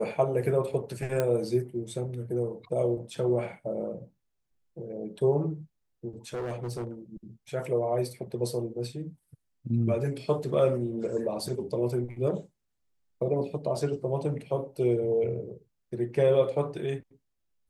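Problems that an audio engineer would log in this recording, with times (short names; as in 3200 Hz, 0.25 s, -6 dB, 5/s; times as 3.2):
1.2 pop -14 dBFS
6.33–6.91 clipped -30 dBFS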